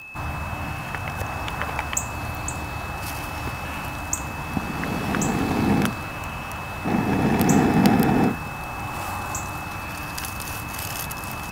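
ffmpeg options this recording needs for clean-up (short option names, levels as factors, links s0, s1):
-af "adeclick=t=4,bandreject=f=2600:w=30"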